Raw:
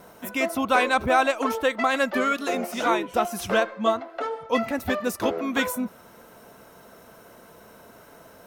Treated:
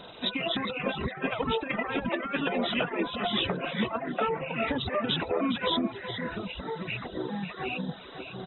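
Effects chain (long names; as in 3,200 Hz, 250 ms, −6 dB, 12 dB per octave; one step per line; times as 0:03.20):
hearing-aid frequency compression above 2,400 Hz 4 to 1
compressor whose output falls as the input rises −27 dBFS, ratio −0.5
repeating echo 411 ms, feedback 29%, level −9.5 dB
delay with pitch and tempo change per echo 82 ms, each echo −5 semitones, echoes 2, each echo −6 dB
reverb reduction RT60 0.65 s
level −2 dB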